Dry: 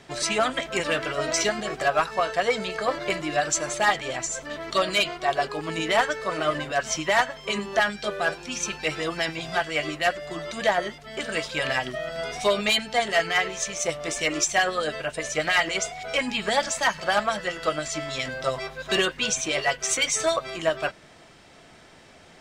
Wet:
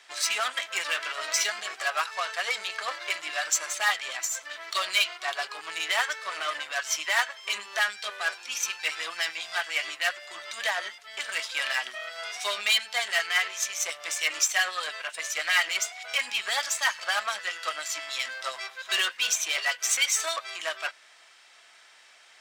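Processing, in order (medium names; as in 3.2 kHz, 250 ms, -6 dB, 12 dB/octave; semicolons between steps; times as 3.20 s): Chebyshev shaper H 8 -23 dB, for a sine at -12 dBFS; high-pass 1.3 kHz 12 dB/octave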